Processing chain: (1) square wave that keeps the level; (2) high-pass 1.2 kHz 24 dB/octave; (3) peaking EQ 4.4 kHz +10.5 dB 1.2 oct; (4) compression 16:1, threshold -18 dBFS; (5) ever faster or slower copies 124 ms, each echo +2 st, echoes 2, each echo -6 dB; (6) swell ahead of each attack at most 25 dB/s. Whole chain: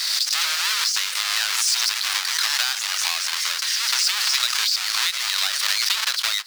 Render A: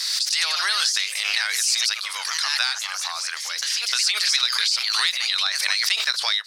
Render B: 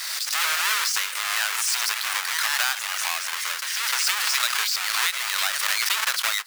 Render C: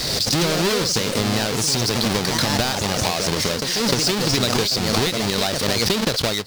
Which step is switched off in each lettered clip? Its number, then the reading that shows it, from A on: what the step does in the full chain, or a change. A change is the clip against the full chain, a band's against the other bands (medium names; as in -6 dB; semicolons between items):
1, distortion -5 dB; 3, 4 kHz band -6.5 dB; 2, 500 Hz band +28.0 dB